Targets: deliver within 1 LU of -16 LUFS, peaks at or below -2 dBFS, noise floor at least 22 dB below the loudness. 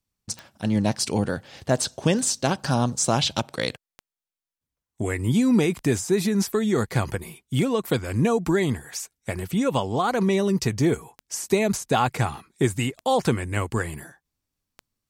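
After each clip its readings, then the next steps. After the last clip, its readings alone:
clicks found 9; loudness -24.5 LUFS; peak level -7.5 dBFS; loudness target -16.0 LUFS
-> de-click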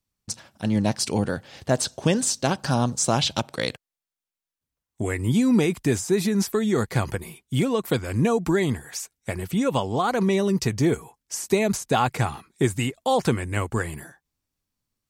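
clicks found 0; loudness -24.0 LUFS; peak level -7.5 dBFS; loudness target -16.0 LUFS
-> trim +8 dB; peak limiter -2 dBFS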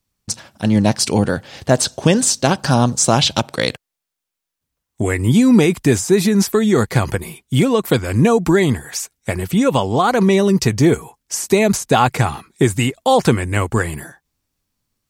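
loudness -16.5 LUFS; peak level -2.0 dBFS; noise floor -82 dBFS

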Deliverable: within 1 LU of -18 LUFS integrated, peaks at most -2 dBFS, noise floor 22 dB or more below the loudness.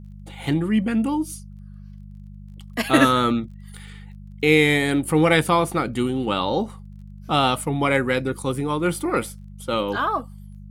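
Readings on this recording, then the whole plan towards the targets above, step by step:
tick rate 17 per s; hum 50 Hz; highest harmonic 200 Hz; hum level -37 dBFS; loudness -21.5 LUFS; peak level -1.0 dBFS; loudness target -18.0 LUFS
-> de-click; de-hum 50 Hz, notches 4; trim +3.5 dB; peak limiter -2 dBFS

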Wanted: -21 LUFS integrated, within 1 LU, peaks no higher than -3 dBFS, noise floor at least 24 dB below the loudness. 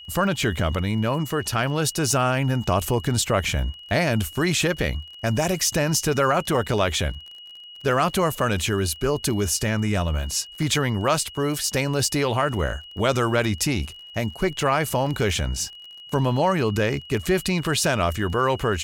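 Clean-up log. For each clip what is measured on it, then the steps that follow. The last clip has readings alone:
tick rate 24 per s; steady tone 2.9 kHz; tone level -40 dBFS; loudness -23.0 LUFS; peak level -8.5 dBFS; loudness target -21.0 LUFS
-> de-click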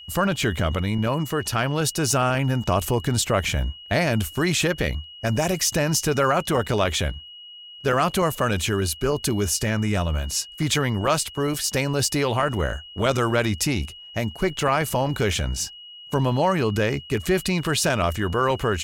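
tick rate 0.58 per s; steady tone 2.9 kHz; tone level -40 dBFS
-> band-stop 2.9 kHz, Q 30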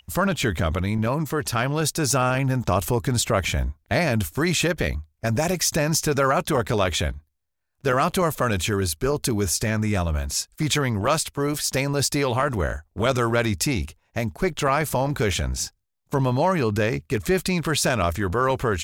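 steady tone not found; loudness -23.5 LUFS; peak level -8.5 dBFS; loudness target -21.0 LUFS
-> trim +2.5 dB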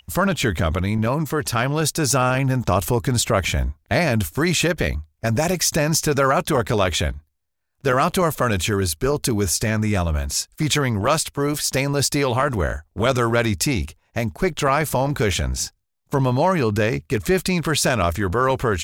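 loudness -21.0 LUFS; peak level -6.0 dBFS; noise floor -68 dBFS

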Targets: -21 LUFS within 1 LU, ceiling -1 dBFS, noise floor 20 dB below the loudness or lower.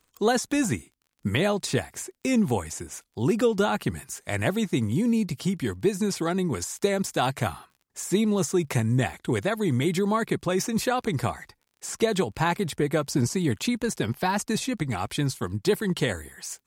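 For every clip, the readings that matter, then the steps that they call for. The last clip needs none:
tick rate 30 per s; loudness -26.5 LUFS; peak level -10.0 dBFS; loudness target -21.0 LUFS
-> de-click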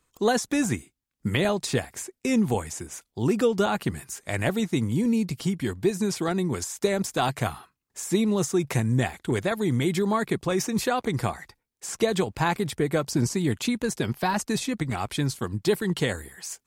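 tick rate 0.24 per s; loudness -26.5 LUFS; peak level -10.0 dBFS; loudness target -21.0 LUFS
-> trim +5.5 dB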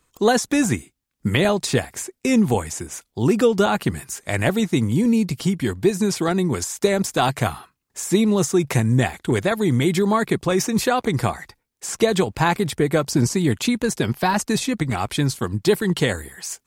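loudness -21.0 LUFS; peak level -4.5 dBFS; noise floor -74 dBFS

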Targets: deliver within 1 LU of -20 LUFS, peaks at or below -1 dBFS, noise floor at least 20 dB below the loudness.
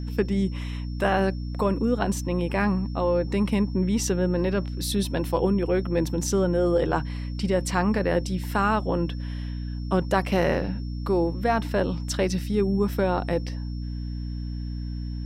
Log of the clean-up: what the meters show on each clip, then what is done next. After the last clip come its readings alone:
hum 60 Hz; highest harmonic 300 Hz; hum level -29 dBFS; steady tone 5.4 kHz; tone level -51 dBFS; loudness -25.5 LUFS; peak level -8.0 dBFS; loudness target -20.0 LUFS
-> hum notches 60/120/180/240/300 Hz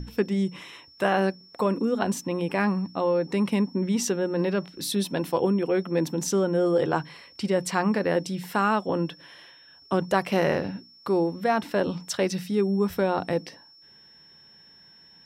hum not found; steady tone 5.4 kHz; tone level -51 dBFS
-> band-stop 5.4 kHz, Q 30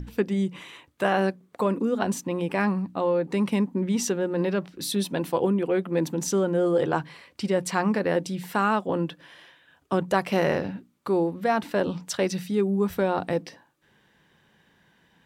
steady tone not found; loudness -26.0 LUFS; peak level -8.0 dBFS; loudness target -20.0 LUFS
-> trim +6 dB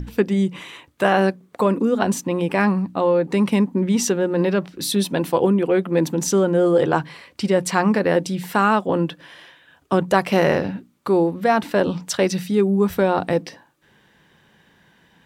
loudness -20.0 LUFS; peak level -2.0 dBFS; noise floor -57 dBFS

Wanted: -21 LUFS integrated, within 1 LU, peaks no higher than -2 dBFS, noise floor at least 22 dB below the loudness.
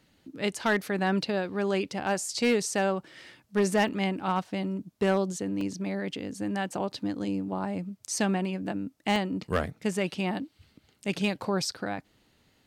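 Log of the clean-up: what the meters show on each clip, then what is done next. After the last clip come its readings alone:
clipped samples 0.4%; clipping level -18.0 dBFS; dropouts 3; longest dropout 2.0 ms; loudness -29.5 LUFS; peak level -18.0 dBFS; loudness target -21.0 LUFS
-> clip repair -18 dBFS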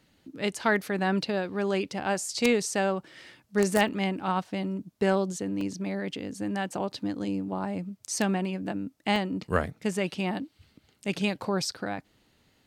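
clipped samples 0.0%; dropouts 3; longest dropout 2.0 ms
-> interpolate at 3.88/5.61/9.16 s, 2 ms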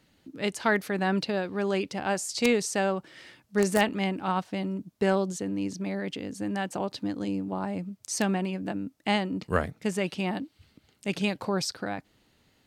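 dropouts 0; loudness -29.5 LUFS; peak level -9.0 dBFS; loudness target -21.0 LUFS
-> trim +8.5 dB; peak limiter -2 dBFS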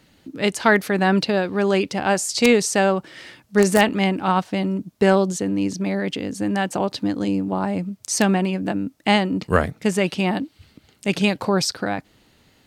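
loudness -21.0 LUFS; peak level -2.0 dBFS; noise floor -58 dBFS

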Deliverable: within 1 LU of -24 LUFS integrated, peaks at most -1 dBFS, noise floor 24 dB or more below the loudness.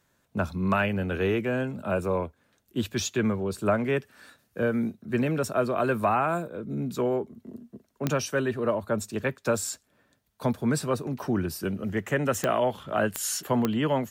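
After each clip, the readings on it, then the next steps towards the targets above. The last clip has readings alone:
clicks found 4; loudness -28.0 LUFS; peak level -9.5 dBFS; loudness target -24.0 LUFS
-> de-click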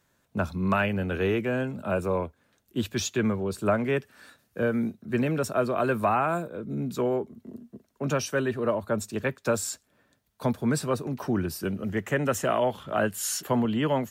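clicks found 0; loudness -28.0 LUFS; peak level -11.5 dBFS; loudness target -24.0 LUFS
-> trim +4 dB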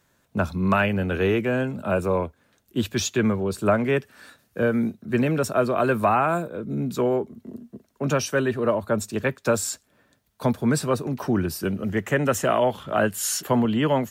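loudness -24.0 LUFS; peak level -7.5 dBFS; noise floor -66 dBFS

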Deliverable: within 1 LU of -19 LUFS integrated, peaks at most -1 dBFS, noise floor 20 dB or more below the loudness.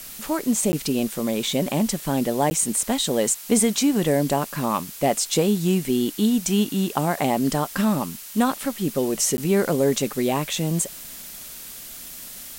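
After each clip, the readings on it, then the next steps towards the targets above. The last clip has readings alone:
dropouts 3; longest dropout 10 ms; noise floor -39 dBFS; noise floor target -43 dBFS; loudness -22.5 LUFS; peak level -7.0 dBFS; loudness target -19.0 LUFS
-> interpolate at 0.72/2.50/9.37 s, 10 ms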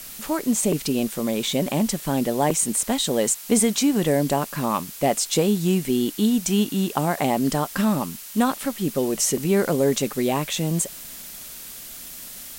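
dropouts 0; noise floor -39 dBFS; noise floor target -43 dBFS
-> noise print and reduce 6 dB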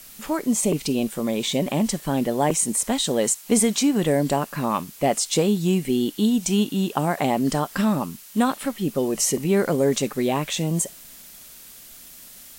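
noise floor -45 dBFS; loudness -22.5 LUFS; peak level -7.0 dBFS; loudness target -19.0 LUFS
-> trim +3.5 dB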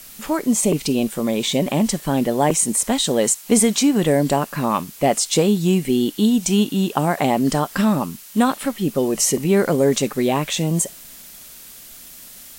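loudness -19.0 LUFS; peak level -3.5 dBFS; noise floor -41 dBFS

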